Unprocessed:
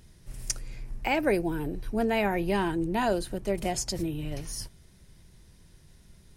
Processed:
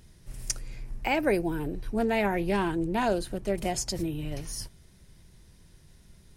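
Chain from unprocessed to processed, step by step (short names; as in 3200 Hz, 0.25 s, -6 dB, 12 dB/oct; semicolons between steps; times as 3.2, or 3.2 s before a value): 1.59–3.58 Doppler distortion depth 0.11 ms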